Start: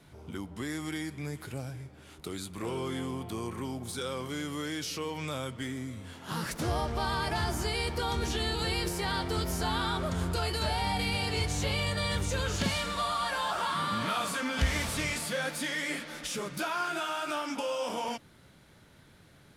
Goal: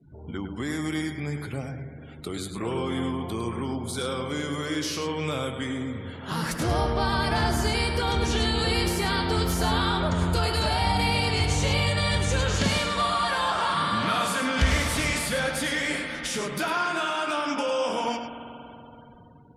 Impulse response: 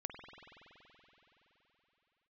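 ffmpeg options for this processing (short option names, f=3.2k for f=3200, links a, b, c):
-filter_complex "[0:a]asplit=2[a][b];[1:a]atrim=start_sample=2205,adelay=103[c];[b][c]afir=irnorm=-1:irlink=0,volume=-3dB[d];[a][d]amix=inputs=2:normalize=0,afftdn=nr=35:nf=-52,volume=5dB"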